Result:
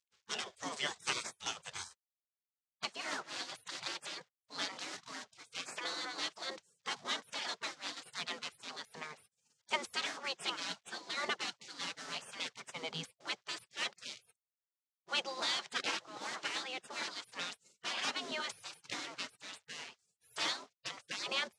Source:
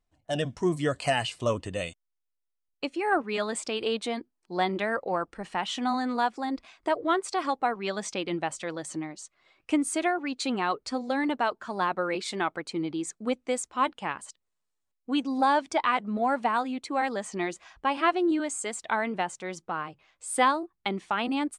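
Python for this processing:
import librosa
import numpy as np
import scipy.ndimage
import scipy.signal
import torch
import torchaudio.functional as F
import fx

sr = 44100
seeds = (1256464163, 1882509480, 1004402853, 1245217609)

y = fx.cvsd(x, sr, bps=64000)
y = fx.cabinet(y, sr, low_hz=170.0, low_slope=24, high_hz=6600.0, hz=(190.0, 290.0, 470.0, 2500.0), db=(-8, 8, -9, -4))
y = fx.spec_gate(y, sr, threshold_db=-25, keep='weak')
y = y * librosa.db_to_amplitude(7.0)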